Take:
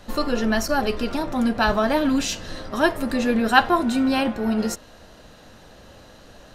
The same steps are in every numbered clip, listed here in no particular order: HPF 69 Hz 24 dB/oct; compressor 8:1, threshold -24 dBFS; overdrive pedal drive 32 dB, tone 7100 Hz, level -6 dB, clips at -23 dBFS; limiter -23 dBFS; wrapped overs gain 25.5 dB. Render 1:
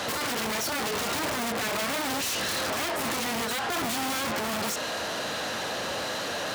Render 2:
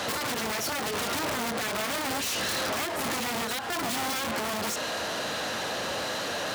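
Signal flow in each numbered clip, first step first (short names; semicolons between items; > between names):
compressor > overdrive pedal > limiter > wrapped overs > HPF; overdrive pedal > compressor > limiter > wrapped overs > HPF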